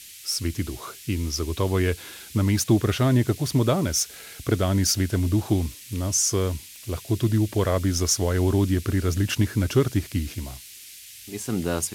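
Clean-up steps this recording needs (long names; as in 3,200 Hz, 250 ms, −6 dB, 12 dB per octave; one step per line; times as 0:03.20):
click removal
noise reduction from a noise print 25 dB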